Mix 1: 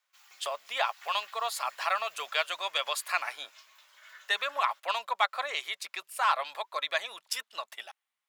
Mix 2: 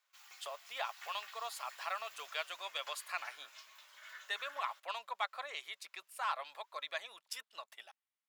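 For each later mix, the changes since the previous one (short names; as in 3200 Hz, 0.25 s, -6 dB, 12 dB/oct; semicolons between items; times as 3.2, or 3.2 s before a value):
speech -10.5 dB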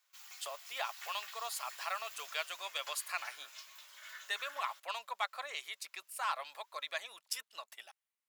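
speech: add bell 3500 Hz -3 dB 0.29 oct; master: add high shelf 4000 Hz +8.5 dB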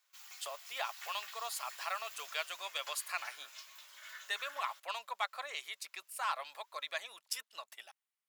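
none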